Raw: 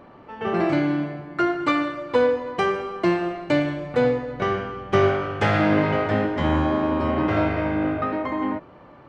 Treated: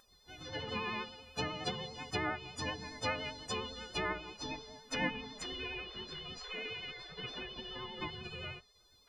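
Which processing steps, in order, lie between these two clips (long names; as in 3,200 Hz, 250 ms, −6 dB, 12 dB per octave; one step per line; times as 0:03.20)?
every partial snapped to a pitch grid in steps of 3 semitones
treble cut that deepens with the level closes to 1,400 Hz, closed at −15 dBFS
dynamic equaliser 500 Hz, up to −3 dB, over −30 dBFS, Q 1.8
gate on every frequency bin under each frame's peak −20 dB weak
pitch vibrato 10 Hz 33 cents
level +2 dB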